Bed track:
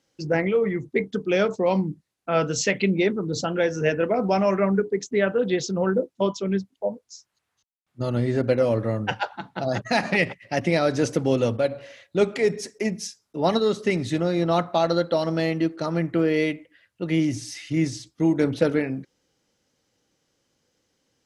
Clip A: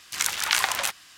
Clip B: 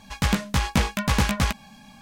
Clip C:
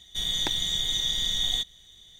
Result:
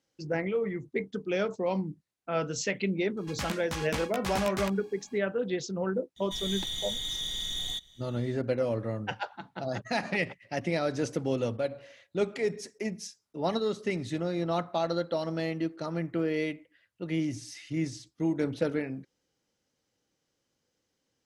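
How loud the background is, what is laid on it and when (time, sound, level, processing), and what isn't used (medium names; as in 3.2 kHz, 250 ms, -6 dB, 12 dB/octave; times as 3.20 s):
bed track -8 dB
3.17 s: add B -9.5 dB + bass shelf 210 Hz -10 dB
6.16 s: add C -4.5 dB + saturation -24 dBFS
not used: A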